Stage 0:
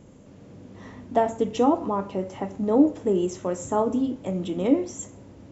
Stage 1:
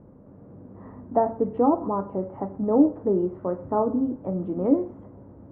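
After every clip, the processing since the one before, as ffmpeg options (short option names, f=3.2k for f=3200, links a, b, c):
-af "lowpass=f=1.3k:w=0.5412,lowpass=f=1.3k:w=1.3066"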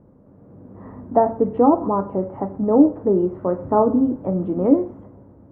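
-af "dynaudnorm=f=150:g=9:m=11.5dB,volume=-1.5dB"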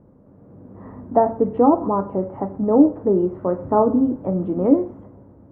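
-af anull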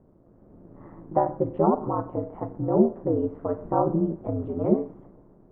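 -af "aeval=exprs='val(0)*sin(2*PI*80*n/s)':c=same,volume=-3.5dB"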